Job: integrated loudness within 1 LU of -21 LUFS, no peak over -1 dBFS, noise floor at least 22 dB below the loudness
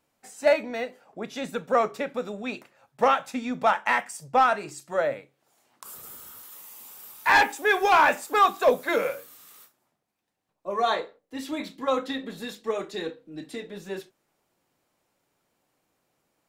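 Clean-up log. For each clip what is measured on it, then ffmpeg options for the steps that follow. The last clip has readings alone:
loudness -25.0 LUFS; peak -10.5 dBFS; loudness target -21.0 LUFS
-> -af "volume=4dB"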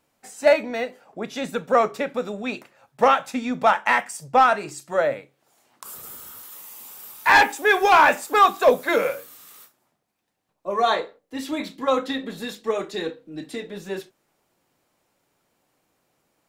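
loudness -21.0 LUFS; peak -6.5 dBFS; noise floor -73 dBFS

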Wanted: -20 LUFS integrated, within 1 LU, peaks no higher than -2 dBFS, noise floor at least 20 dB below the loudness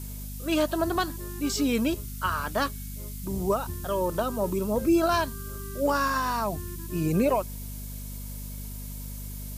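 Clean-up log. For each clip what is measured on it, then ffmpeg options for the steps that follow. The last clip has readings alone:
hum 50 Hz; harmonics up to 250 Hz; hum level -35 dBFS; noise floor -37 dBFS; noise floor target -49 dBFS; loudness -28.5 LUFS; peak -13.0 dBFS; loudness target -20.0 LUFS
-> -af "bandreject=f=50:t=h:w=4,bandreject=f=100:t=h:w=4,bandreject=f=150:t=h:w=4,bandreject=f=200:t=h:w=4,bandreject=f=250:t=h:w=4"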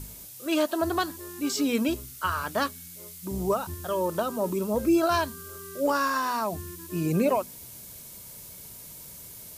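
hum none; noise floor -45 dBFS; noise floor target -48 dBFS
-> -af "afftdn=nr=6:nf=-45"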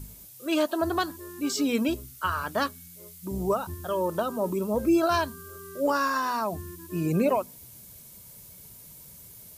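noise floor -49 dBFS; loudness -28.0 LUFS; peak -13.5 dBFS; loudness target -20.0 LUFS
-> -af "volume=8dB"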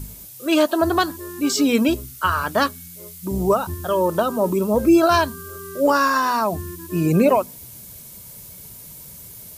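loudness -20.0 LUFS; peak -5.5 dBFS; noise floor -41 dBFS

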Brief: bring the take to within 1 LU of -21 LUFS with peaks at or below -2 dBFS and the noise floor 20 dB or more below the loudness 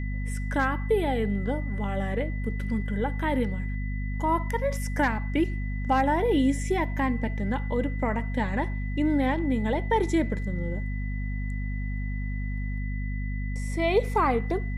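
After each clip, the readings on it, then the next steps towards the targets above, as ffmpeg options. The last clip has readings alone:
hum 50 Hz; harmonics up to 250 Hz; hum level -28 dBFS; steady tone 2000 Hz; tone level -42 dBFS; loudness -28.0 LUFS; peak -12.0 dBFS; loudness target -21.0 LUFS
-> -af "bandreject=f=50:t=h:w=4,bandreject=f=100:t=h:w=4,bandreject=f=150:t=h:w=4,bandreject=f=200:t=h:w=4,bandreject=f=250:t=h:w=4"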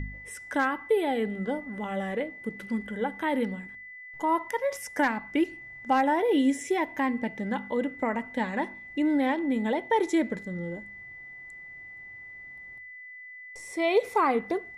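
hum none; steady tone 2000 Hz; tone level -42 dBFS
-> -af "bandreject=f=2k:w=30"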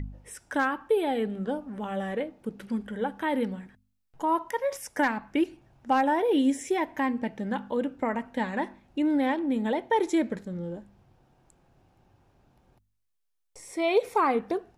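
steady tone none; loudness -28.5 LUFS; peak -13.0 dBFS; loudness target -21.0 LUFS
-> -af "volume=7.5dB"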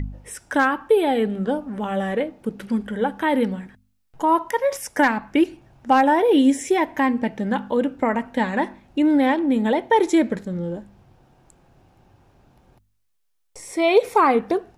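loudness -21.0 LUFS; peak -5.5 dBFS; noise floor -68 dBFS

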